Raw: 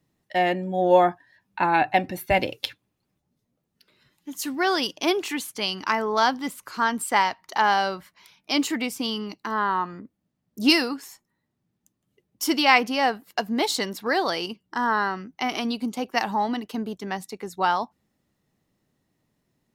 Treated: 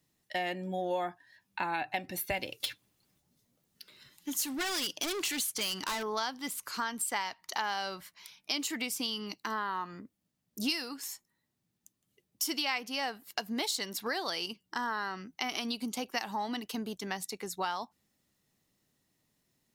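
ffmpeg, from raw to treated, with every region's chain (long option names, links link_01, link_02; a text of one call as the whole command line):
ffmpeg -i in.wav -filter_complex "[0:a]asettb=1/sr,asplit=3[link_01][link_02][link_03];[link_01]atrim=end=2.604[link_04];[link_02]atrim=start=2.6:end=6.03,asetpts=PTS-STARTPTS,afade=type=in:duration=0.004:curve=qsin,afade=type=out:start_time=3.426:duration=0.004:curve=qsin,bandreject=frequency=2500:width=28,acontrast=56,volume=23dB,asoftclip=hard,volume=-23dB[link_05];[link_03]atrim=start=6.026[link_06];[link_04][link_05]acrossfade=duration=0.004:curve1=hsin:curve2=qsin[link_07];[link_07][link_06]acrossfade=duration=0.004:curve1=qsin:curve2=hsin,highshelf=frequency=2300:gain=11.5,acompressor=threshold=-25dB:ratio=4,volume=-6.5dB" out.wav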